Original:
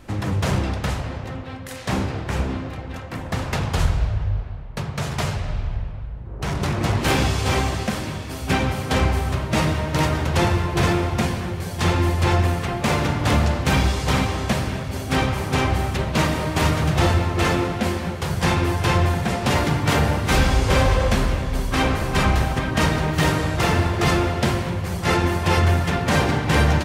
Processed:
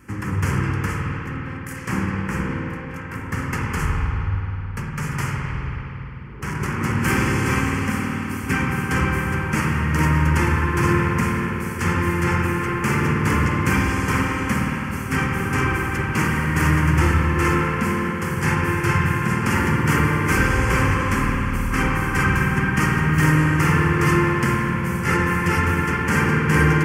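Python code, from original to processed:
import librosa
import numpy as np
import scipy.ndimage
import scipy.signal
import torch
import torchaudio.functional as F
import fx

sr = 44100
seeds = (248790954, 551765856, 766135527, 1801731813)

y = fx.highpass(x, sr, hz=140.0, slope=6)
y = fx.fixed_phaser(y, sr, hz=1600.0, stages=4)
y = fx.rev_spring(y, sr, rt60_s=3.3, pass_ms=(52,), chirp_ms=50, drr_db=0.0)
y = F.gain(torch.from_numpy(y), 2.0).numpy()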